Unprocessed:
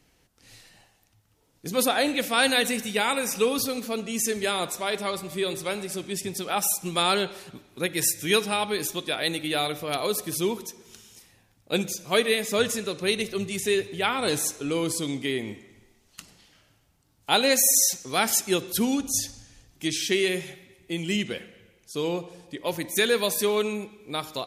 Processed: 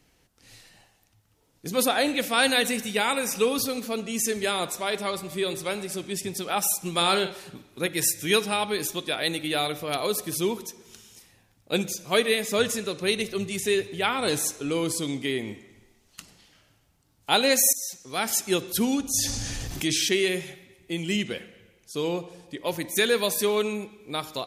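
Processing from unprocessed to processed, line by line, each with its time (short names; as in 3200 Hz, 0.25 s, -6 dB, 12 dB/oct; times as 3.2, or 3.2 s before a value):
6.96–7.88 doubler 47 ms -9.5 dB
17.73–18.56 fade in, from -17.5 dB
19.18–20.09 fast leveller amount 70%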